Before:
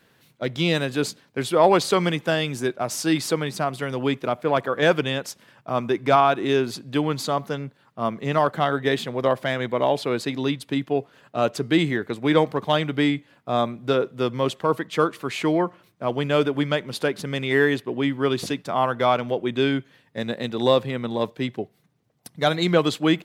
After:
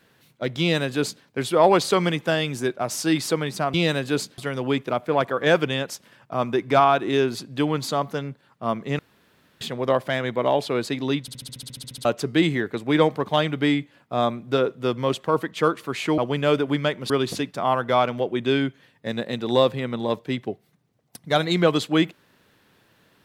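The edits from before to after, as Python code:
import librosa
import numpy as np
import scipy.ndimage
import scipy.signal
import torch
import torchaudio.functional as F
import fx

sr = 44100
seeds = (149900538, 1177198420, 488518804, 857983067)

y = fx.edit(x, sr, fx.duplicate(start_s=0.6, length_s=0.64, to_s=3.74),
    fx.room_tone_fill(start_s=8.35, length_s=0.62),
    fx.stutter_over(start_s=10.57, slice_s=0.07, count=12),
    fx.cut(start_s=15.54, length_s=0.51),
    fx.cut(start_s=16.97, length_s=1.24), tone=tone)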